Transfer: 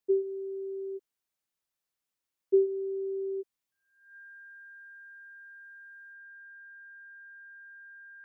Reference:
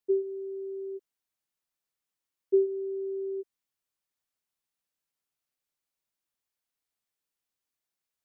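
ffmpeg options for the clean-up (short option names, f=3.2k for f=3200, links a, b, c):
-af "bandreject=f=1.6k:w=30,asetnsamples=n=441:p=0,asendcmd='6.13 volume volume 6.5dB',volume=0dB"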